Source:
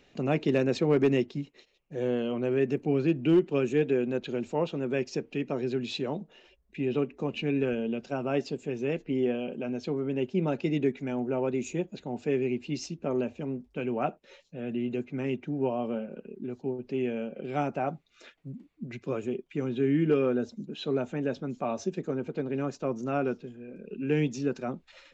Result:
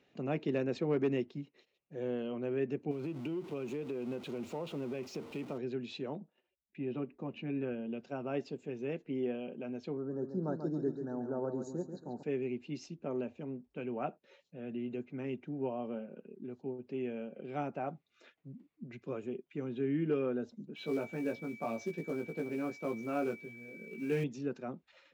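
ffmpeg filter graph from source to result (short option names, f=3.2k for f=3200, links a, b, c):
-filter_complex "[0:a]asettb=1/sr,asplit=3[a][b][c];[a]atrim=end=2.914[d];[b]atrim=start=2.91:end=5.58,asetpts=PTS-STARTPTS,afade=t=in:d=0.004:c=qsin,afade=t=out:st=2.666:d=0.004:c=qsin,aeval=exprs='val(0)+0.5*0.015*sgn(val(0))':c=same,equalizer=f=1.7k:w=7.6:g=-10.5,acompressor=threshold=-26dB:ratio=12:attack=3.2:release=140:knee=1:detection=peak[e];[c]atrim=start=5.576[f];[d][e]acrossfade=d=0.004:c1=hsin:c2=qsin[g];[g][f]acrossfade=d=0.004:c1=qsin:c2=hsin,asettb=1/sr,asplit=3[h][i][j];[h]atrim=end=6.154[k];[i]atrim=start=6.15:end=7.93,asetpts=PTS-STARTPTS,afade=t=in:d=0.004:c=qsin,afade=t=out:st=1.776:d=0.004:c=qsin,highshelf=f=3.6k:g=-10.5,agate=range=-15dB:threshold=-57dB:ratio=16:release=100:detection=peak,bandreject=f=440:w=8.7[l];[j]atrim=start=7.926[m];[k][l]acrossfade=d=0.004:c1=hsin:c2=qsin[n];[n][m]acrossfade=d=0.004:c1=qsin:c2=hsin,asettb=1/sr,asplit=3[o][p][q];[o]atrim=end=9.974[r];[p]atrim=start=9.97:end=12.23,asetpts=PTS-STARTPTS,afade=t=in:d=0.004:c=qsin,afade=t=out:st=2.256:d=0.004:c=qsin,asuperstop=centerf=2600:order=20:qfactor=1.2,aecho=1:1:138|276|414|552:0.398|0.147|0.0545|0.0202,atrim=end_sample=99666[s];[q]atrim=start=12.226[t];[r][s]acrossfade=d=0.004:c1=hsin:c2=qsin[u];[u][t]acrossfade=d=0.004:c1=qsin:c2=hsin,asettb=1/sr,asplit=3[v][w][x];[v]atrim=end=20.764[y];[w]atrim=start=20.76:end=24.24,asetpts=PTS-STARTPTS,afade=t=in:d=0.004:c=qsin,afade=t=out:st=3.476:d=0.004:c=qsin,aeval=exprs='val(0)+0.0112*sin(2*PI*2300*n/s)':c=same,acrusher=bits=5:mode=log:mix=0:aa=0.000001,asplit=2[z][aa];[aa]adelay=18,volume=-3.5dB[ab];[z][ab]amix=inputs=2:normalize=0,atrim=end_sample=153468[ac];[x]atrim=start=24.236[ad];[y][ac]acrossfade=d=0.004:c1=hsin:c2=qsin[ae];[ae][ad]acrossfade=d=0.004:c1=qsin:c2=hsin,highpass=100,highshelf=f=4.9k:g=-9.5,volume=-7.5dB"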